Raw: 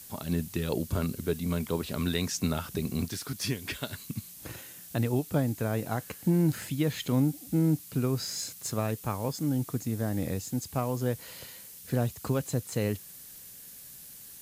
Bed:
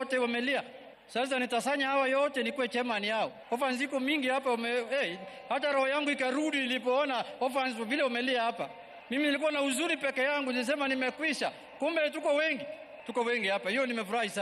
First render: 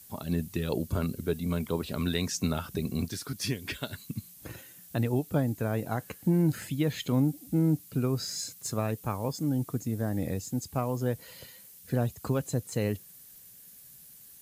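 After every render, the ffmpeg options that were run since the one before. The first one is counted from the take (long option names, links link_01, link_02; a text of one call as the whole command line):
ffmpeg -i in.wav -af "afftdn=noise_reduction=7:noise_floor=-48" out.wav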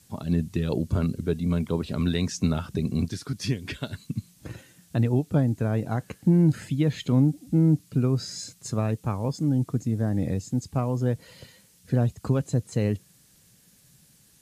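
ffmpeg -i in.wav -af "lowpass=8100,equalizer=frequency=130:width_type=o:width=2.8:gain=6.5" out.wav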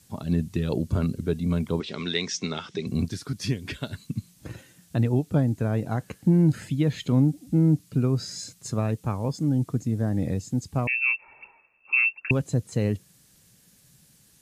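ffmpeg -i in.wav -filter_complex "[0:a]asettb=1/sr,asplit=3[link_01][link_02][link_03];[link_01]atrim=end=1.804[link_04];[link_02]atrim=start=1.8:end=2.87,asetpts=PTS-STARTPTS,afade=type=in:duration=0.004:curve=qsin,afade=type=out:start_time=1.066:duration=0.004:curve=qsin,highpass=260,equalizer=frequency=260:width_type=q:width=4:gain=-5,equalizer=frequency=400:width_type=q:width=4:gain=3,equalizer=frequency=610:width_type=q:width=4:gain=-5,equalizer=frequency=2100:width_type=q:width=4:gain=9,equalizer=frequency=3400:width_type=q:width=4:gain=9,equalizer=frequency=5500:width_type=q:width=4:gain=6,lowpass=frequency=7300:width=0.5412,lowpass=frequency=7300:width=1.3066[link_05];[link_03]atrim=start=2.866[link_06];[link_04][link_05]acrossfade=duration=0.004:curve1=hsin:curve2=qsin[link_07];[link_07][link_06]acrossfade=duration=0.004:curve1=qsin:curve2=hsin,asettb=1/sr,asplit=3[link_08][link_09][link_10];[link_08]atrim=end=10.874[link_11];[link_09]atrim=start=10.87:end=12.31,asetpts=PTS-STARTPTS,afade=type=in:duration=0.004:curve=qsin,afade=type=out:start_time=1.436:duration=0.004:curve=qsin,lowpass=frequency=2400:width_type=q:width=0.5098,lowpass=frequency=2400:width_type=q:width=0.6013,lowpass=frequency=2400:width_type=q:width=0.9,lowpass=frequency=2400:width_type=q:width=2.563,afreqshift=-2800[link_12];[link_10]atrim=start=12.306[link_13];[link_11][link_12]acrossfade=duration=0.004:curve1=hsin:curve2=qsin[link_14];[link_14][link_13]acrossfade=duration=0.004:curve1=qsin:curve2=hsin" out.wav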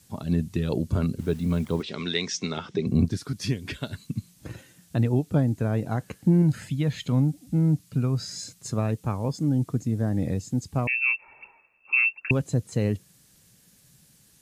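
ffmpeg -i in.wav -filter_complex "[0:a]asettb=1/sr,asplit=3[link_01][link_02][link_03];[link_01]atrim=end=1.194[link_04];[link_02]atrim=start=1.19:end=1.83,asetpts=PTS-STARTPTS,afade=type=in:duration=0.004:curve=qsin,afade=type=out:start_time=0.636:duration=0.004:curve=qsin,acrusher=bits=7:mix=0:aa=0.5[link_05];[link_03]atrim=start=1.826[link_06];[link_04][link_05]acrossfade=duration=0.004:curve1=hsin:curve2=qsin[link_07];[link_07][link_06]acrossfade=duration=0.004:curve1=qsin:curve2=hsin,asettb=1/sr,asplit=3[link_08][link_09][link_10];[link_08]atrim=end=2.574[link_11];[link_09]atrim=start=2.57:end=3.17,asetpts=PTS-STARTPTS,afade=type=in:duration=0.004:curve=qsin,afade=type=out:start_time=0.596:duration=0.004:curve=qsin,tiltshelf=frequency=1400:gain=5[link_12];[link_10]atrim=start=3.166[link_13];[link_11][link_12]acrossfade=duration=0.004:curve1=hsin:curve2=qsin[link_14];[link_14][link_13]acrossfade=duration=0.004:curve1=qsin:curve2=hsin,asettb=1/sr,asplit=3[link_15][link_16][link_17];[link_15]atrim=end=6.424[link_18];[link_16]atrim=start=6.42:end=8.33,asetpts=PTS-STARTPTS,afade=type=in:duration=0.004:curve=qsin,afade=type=out:start_time=1.906:duration=0.004:curve=qsin,equalizer=frequency=350:width=1.5:gain=-6.5[link_19];[link_17]atrim=start=8.326[link_20];[link_18][link_19]acrossfade=duration=0.004:curve1=hsin:curve2=qsin[link_21];[link_21][link_20]acrossfade=duration=0.004:curve1=qsin:curve2=hsin" out.wav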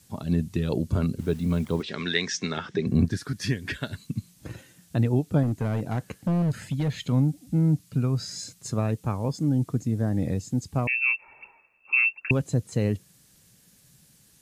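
ffmpeg -i in.wav -filter_complex "[0:a]asettb=1/sr,asplit=3[link_01][link_02][link_03];[link_01]atrim=end=1.884[link_04];[link_02]atrim=start=1.88:end=3.91,asetpts=PTS-STARTPTS,afade=type=in:duration=0.004:curve=qsin,afade=type=out:start_time=2.026:duration=0.004:curve=qsin,equalizer=frequency=1700:width=4:gain=11.5[link_05];[link_03]atrim=start=3.906[link_06];[link_04][link_05]acrossfade=duration=0.004:curve1=hsin:curve2=qsin[link_07];[link_07][link_06]acrossfade=duration=0.004:curve1=qsin:curve2=hsin,asettb=1/sr,asplit=3[link_08][link_09][link_10];[link_08]atrim=end=5.434[link_11];[link_09]atrim=start=5.43:end=7.08,asetpts=PTS-STARTPTS,afade=type=in:duration=0.004:curve=qsin,afade=type=out:start_time=1.646:duration=0.004:curve=qsin,asoftclip=type=hard:threshold=-21dB[link_12];[link_10]atrim=start=7.076[link_13];[link_11][link_12]acrossfade=duration=0.004:curve1=hsin:curve2=qsin[link_14];[link_14][link_13]acrossfade=duration=0.004:curve1=qsin:curve2=hsin" out.wav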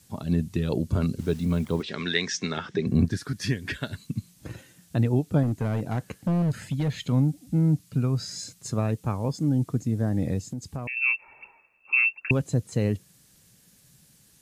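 ffmpeg -i in.wav -filter_complex "[0:a]asettb=1/sr,asplit=3[link_01][link_02][link_03];[link_01]atrim=end=1.014[link_04];[link_02]atrim=start=1.01:end=1.45,asetpts=PTS-STARTPTS,afade=type=in:duration=0.004:curve=qsin,afade=type=out:start_time=0.436:duration=0.004:curve=qsin,equalizer=frequency=5300:width_type=o:width=1.4:gain=4[link_05];[link_03]atrim=start=1.446[link_06];[link_04][link_05]acrossfade=duration=0.004:curve1=hsin:curve2=qsin[link_07];[link_07][link_06]acrossfade=duration=0.004:curve1=qsin:curve2=hsin,asettb=1/sr,asplit=3[link_08][link_09][link_10];[link_08]atrim=end=10.494[link_11];[link_09]atrim=start=10.49:end=10.97,asetpts=PTS-STARTPTS,afade=type=in:duration=0.004:curve=qsin,afade=type=out:start_time=0.476:duration=0.004:curve=qsin,acompressor=threshold=-29dB:ratio=6:attack=3.2:release=140:knee=1:detection=peak[link_12];[link_10]atrim=start=10.966[link_13];[link_11][link_12]acrossfade=duration=0.004:curve1=hsin:curve2=qsin[link_14];[link_14][link_13]acrossfade=duration=0.004:curve1=qsin:curve2=hsin" out.wav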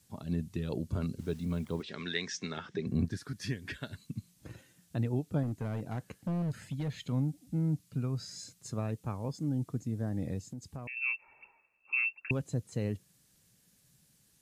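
ffmpeg -i in.wav -af "volume=-9dB" out.wav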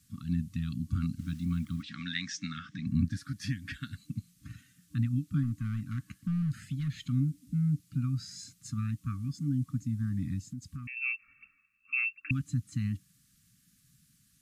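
ffmpeg -i in.wav -af "afftfilt=real='re*(1-between(b*sr/4096,300,1100))':imag='im*(1-between(b*sr/4096,300,1100))':win_size=4096:overlap=0.75,lowshelf=frequency=320:gain=3.5" out.wav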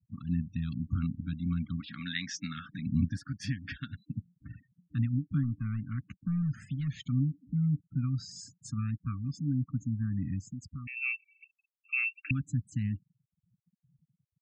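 ffmpeg -i in.wav -af "bandreject=frequency=4100:width=15,afftfilt=real='re*gte(hypot(re,im),0.00355)':imag='im*gte(hypot(re,im),0.00355)':win_size=1024:overlap=0.75" out.wav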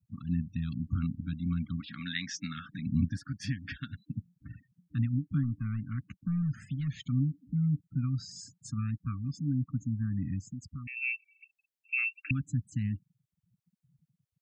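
ffmpeg -i in.wav -filter_complex "[0:a]asplit=3[link_01][link_02][link_03];[link_01]afade=type=out:start_time=10.82:duration=0.02[link_04];[link_02]asuperstop=centerf=1200:order=8:qfactor=2.7,afade=type=in:start_time=10.82:duration=0.02,afade=type=out:start_time=11.97:duration=0.02[link_05];[link_03]afade=type=in:start_time=11.97:duration=0.02[link_06];[link_04][link_05][link_06]amix=inputs=3:normalize=0" out.wav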